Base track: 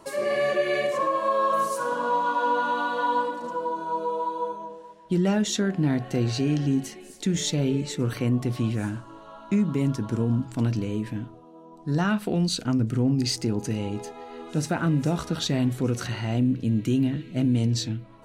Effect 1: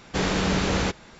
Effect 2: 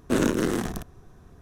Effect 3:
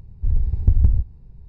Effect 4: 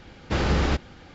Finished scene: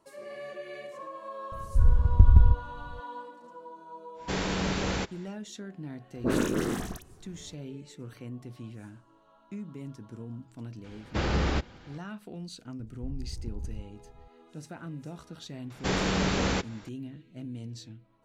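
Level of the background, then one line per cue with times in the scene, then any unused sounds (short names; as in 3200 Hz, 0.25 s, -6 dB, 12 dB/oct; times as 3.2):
base track -17 dB
1.52 add 3 -1 dB
4.14 add 1 -6 dB, fades 0.10 s + notch 1200 Hz, Q 28
6.14 add 2 -4 dB + dispersion highs, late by 63 ms, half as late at 1800 Hz
10.84 add 4 -4.5 dB
12.8 add 3 -11.5 dB + compressor, threshold -21 dBFS
15.7 add 1 -3.5 dB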